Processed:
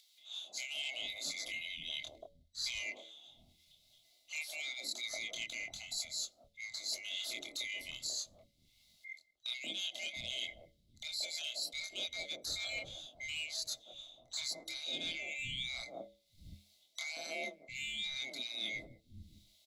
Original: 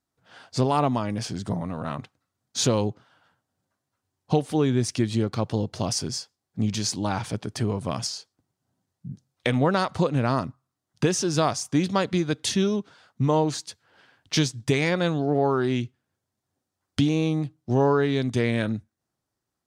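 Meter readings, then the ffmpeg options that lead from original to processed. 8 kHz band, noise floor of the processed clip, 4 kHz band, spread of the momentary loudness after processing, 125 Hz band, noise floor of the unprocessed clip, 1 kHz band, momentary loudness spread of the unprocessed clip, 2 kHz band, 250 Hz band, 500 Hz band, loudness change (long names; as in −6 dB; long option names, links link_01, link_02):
−10.0 dB, −72 dBFS, −4.0 dB, 13 LU, −34.5 dB, −84 dBFS, −29.0 dB, 11 LU, −6.5 dB, −34.0 dB, −27.0 dB, −14.5 dB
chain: -filter_complex "[0:a]afftfilt=real='real(if(lt(b,920),b+92*(1-2*mod(floor(b/92),2)),b),0)':imag='imag(if(lt(b,920),b+92*(1-2*mod(floor(b/92),2)),b),0)':win_size=2048:overlap=0.75,equalizer=frequency=330:width_type=o:width=2.2:gain=13.5,bandreject=frequency=60:width_type=h:width=6,bandreject=frequency=120:width_type=h:width=6,bandreject=frequency=180:width_type=h:width=6,bandreject=frequency=240:width_type=h:width=6,bandreject=frequency=300:width_type=h:width=6,bandreject=frequency=360:width_type=h:width=6,bandreject=frequency=420:width_type=h:width=6,bandreject=frequency=480:width_type=h:width=6,bandreject=frequency=540:width_type=h:width=6,bandreject=frequency=600:width_type=h:width=6,asplit=2[link_01][link_02];[link_02]adelay=25,volume=-3.5dB[link_03];[link_01][link_03]amix=inputs=2:normalize=0,asoftclip=type=tanh:threshold=-9dB,firequalizer=gain_entry='entry(120,0);entry(190,-8);entry(470,-15);entry(670,4);entry(960,-13);entry(1700,-17);entry(2500,-13);entry(3800,12);entry(6600,1)':delay=0.05:min_phase=1,areverse,acompressor=threshold=-38dB:ratio=8,areverse,afreqshift=-35,acompressor=mode=upward:threshold=-56dB:ratio=2.5,acrossover=split=200|920[link_04][link_05][link_06];[link_05]adelay=180[link_07];[link_04]adelay=700[link_08];[link_08][link_07][link_06]amix=inputs=3:normalize=0"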